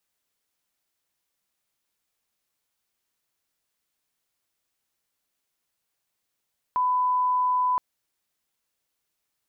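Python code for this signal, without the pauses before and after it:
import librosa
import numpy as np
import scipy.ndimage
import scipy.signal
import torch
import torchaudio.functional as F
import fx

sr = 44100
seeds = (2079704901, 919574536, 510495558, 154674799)

y = fx.lineup_tone(sr, length_s=1.02, level_db=-20.0)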